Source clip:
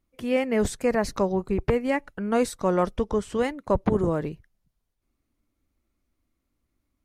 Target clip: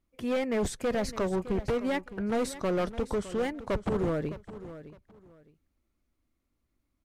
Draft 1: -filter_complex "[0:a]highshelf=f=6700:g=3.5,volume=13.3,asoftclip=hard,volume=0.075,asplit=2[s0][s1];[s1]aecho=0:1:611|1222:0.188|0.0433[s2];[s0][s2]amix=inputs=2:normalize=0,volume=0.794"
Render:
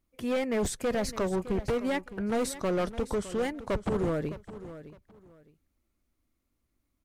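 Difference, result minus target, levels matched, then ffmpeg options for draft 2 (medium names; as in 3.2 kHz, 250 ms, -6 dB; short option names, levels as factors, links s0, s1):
8 kHz band +3.5 dB
-filter_complex "[0:a]highshelf=f=6700:g=-3,volume=13.3,asoftclip=hard,volume=0.075,asplit=2[s0][s1];[s1]aecho=0:1:611|1222:0.188|0.0433[s2];[s0][s2]amix=inputs=2:normalize=0,volume=0.794"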